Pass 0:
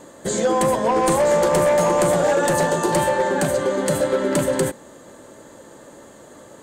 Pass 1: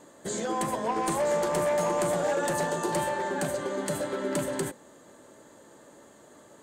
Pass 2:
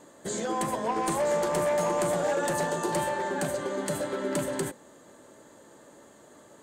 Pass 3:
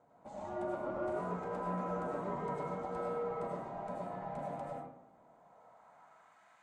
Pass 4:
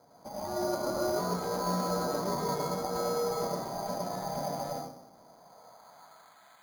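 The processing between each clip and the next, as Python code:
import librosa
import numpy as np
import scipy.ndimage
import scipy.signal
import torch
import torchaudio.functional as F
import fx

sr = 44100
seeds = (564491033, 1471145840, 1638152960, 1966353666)

y1 = fx.low_shelf(x, sr, hz=89.0, db=-7.5)
y1 = fx.notch(y1, sr, hz=520.0, q=17.0)
y1 = F.gain(torch.from_numpy(y1), -8.5).numpy()
y2 = y1
y3 = y2 * np.sin(2.0 * np.pi * 410.0 * np.arange(len(y2)) / sr)
y3 = fx.filter_sweep_bandpass(y3, sr, from_hz=430.0, to_hz=2000.0, start_s=5.11, end_s=6.5, q=1.2)
y3 = fx.rev_freeverb(y3, sr, rt60_s=0.79, hf_ratio=0.55, predelay_ms=60, drr_db=-2.5)
y3 = F.gain(torch.from_numpy(y3), -5.5).numpy()
y4 = np.repeat(scipy.signal.resample_poly(y3, 1, 8), 8)[:len(y3)]
y4 = F.gain(torch.from_numpy(y4), 6.5).numpy()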